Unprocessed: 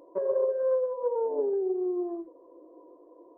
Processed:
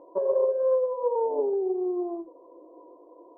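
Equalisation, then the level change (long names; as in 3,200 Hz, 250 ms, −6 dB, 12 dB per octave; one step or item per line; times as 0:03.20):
low-pass with resonance 920 Hz, resonance Q 2.1
0.0 dB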